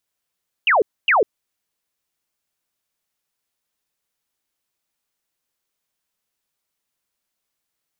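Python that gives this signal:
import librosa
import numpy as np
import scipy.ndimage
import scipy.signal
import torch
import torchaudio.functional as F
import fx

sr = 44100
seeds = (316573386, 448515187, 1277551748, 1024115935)

y = fx.laser_zaps(sr, level_db=-12.0, start_hz=3000.0, end_hz=370.0, length_s=0.15, wave='sine', shots=2, gap_s=0.26)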